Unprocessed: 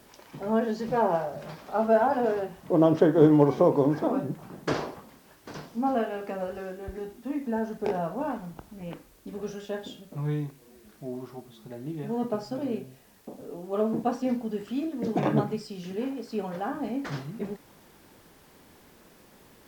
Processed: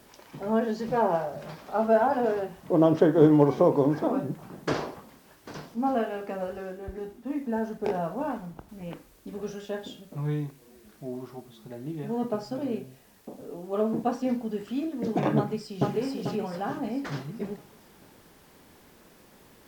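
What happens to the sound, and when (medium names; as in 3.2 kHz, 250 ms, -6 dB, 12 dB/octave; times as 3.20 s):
5.74–8.69 s: tape noise reduction on one side only decoder only
15.37–15.91 s: echo throw 440 ms, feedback 45%, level 0 dB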